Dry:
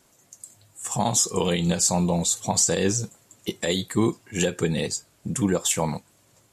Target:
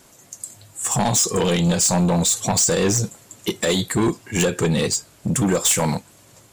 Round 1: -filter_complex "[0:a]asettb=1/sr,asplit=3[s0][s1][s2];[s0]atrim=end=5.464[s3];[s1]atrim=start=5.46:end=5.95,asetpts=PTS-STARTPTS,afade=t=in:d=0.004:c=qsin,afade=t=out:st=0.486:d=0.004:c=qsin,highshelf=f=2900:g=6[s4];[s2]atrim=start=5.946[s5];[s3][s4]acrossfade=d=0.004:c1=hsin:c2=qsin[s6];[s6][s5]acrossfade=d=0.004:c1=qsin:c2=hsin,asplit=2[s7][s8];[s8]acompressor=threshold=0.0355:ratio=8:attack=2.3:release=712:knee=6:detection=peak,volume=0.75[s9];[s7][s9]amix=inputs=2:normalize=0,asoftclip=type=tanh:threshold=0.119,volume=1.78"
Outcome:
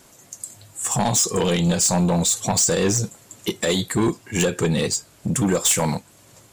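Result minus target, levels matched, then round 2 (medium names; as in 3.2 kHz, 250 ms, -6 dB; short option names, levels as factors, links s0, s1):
compression: peak gain reduction +8.5 dB
-filter_complex "[0:a]asettb=1/sr,asplit=3[s0][s1][s2];[s0]atrim=end=5.464[s3];[s1]atrim=start=5.46:end=5.95,asetpts=PTS-STARTPTS,afade=t=in:d=0.004:c=qsin,afade=t=out:st=0.486:d=0.004:c=qsin,highshelf=f=2900:g=6[s4];[s2]atrim=start=5.946[s5];[s3][s4]acrossfade=d=0.004:c1=hsin:c2=qsin[s6];[s6][s5]acrossfade=d=0.004:c1=qsin:c2=hsin,asplit=2[s7][s8];[s8]acompressor=threshold=0.112:ratio=8:attack=2.3:release=712:knee=6:detection=peak,volume=0.75[s9];[s7][s9]amix=inputs=2:normalize=0,asoftclip=type=tanh:threshold=0.119,volume=1.78"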